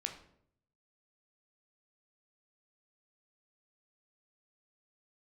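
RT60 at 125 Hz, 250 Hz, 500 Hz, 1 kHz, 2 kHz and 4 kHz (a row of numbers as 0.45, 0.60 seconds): 1.0, 0.80, 0.75, 0.60, 0.50, 0.45 seconds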